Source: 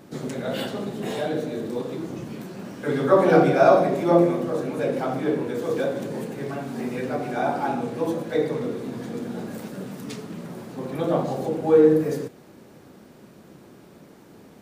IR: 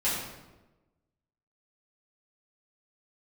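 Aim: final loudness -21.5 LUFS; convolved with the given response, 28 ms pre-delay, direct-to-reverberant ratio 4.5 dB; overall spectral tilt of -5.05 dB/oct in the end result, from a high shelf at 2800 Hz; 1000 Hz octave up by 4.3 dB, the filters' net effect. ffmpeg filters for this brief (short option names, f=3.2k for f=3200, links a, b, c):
-filter_complex "[0:a]equalizer=f=1k:t=o:g=5.5,highshelf=f=2.8k:g=7.5,asplit=2[a][b];[1:a]atrim=start_sample=2205,adelay=28[c];[b][c]afir=irnorm=-1:irlink=0,volume=-14.5dB[d];[a][d]amix=inputs=2:normalize=0,volume=-0.5dB"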